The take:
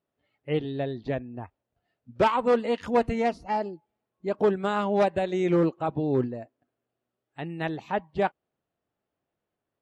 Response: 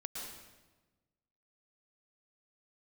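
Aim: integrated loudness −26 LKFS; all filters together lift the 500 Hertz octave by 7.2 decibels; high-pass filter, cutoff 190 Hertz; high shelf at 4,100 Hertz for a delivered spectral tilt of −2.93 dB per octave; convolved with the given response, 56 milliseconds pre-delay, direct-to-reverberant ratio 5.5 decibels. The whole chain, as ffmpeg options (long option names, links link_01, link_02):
-filter_complex "[0:a]highpass=190,equalizer=frequency=500:width_type=o:gain=9,highshelf=frequency=4100:gain=-8,asplit=2[link_01][link_02];[1:a]atrim=start_sample=2205,adelay=56[link_03];[link_02][link_03]afir=irnorm=-1:irlink=0,volume=-5dB[link_04];[link_01][link_04]amix=inputs=2:normalize=0,volume=-5dB"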